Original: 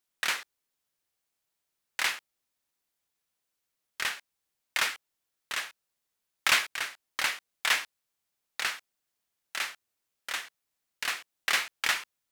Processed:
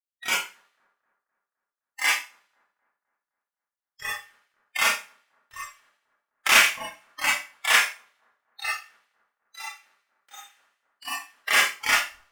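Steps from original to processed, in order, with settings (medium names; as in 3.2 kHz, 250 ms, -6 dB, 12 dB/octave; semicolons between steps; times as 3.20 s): on a send: two-band feedback delay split 1.4 kHz, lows 258 ms, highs 82 ms, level -10 dB; on the sum: dynamic bell 4.1 kHz, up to -8 dB, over -49 dBFS, Q 3.2; spectral noise reduction 25 dB; Schroeder reverb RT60 0.31 s, combs from 27 ms, DRR -6.5 dB; trim +1.5 dB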